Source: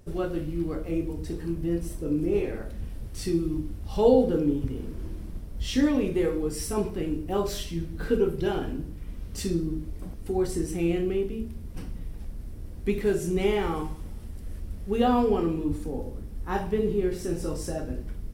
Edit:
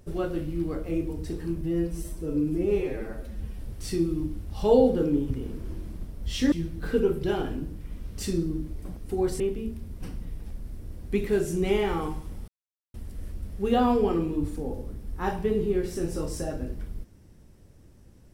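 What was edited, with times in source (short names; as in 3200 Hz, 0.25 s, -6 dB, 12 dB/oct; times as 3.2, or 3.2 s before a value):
1.61–2.93 stretch 1.5×
5.86–7.69 cut
10.57–11.14 cut
14.22 insert silence 0.46 s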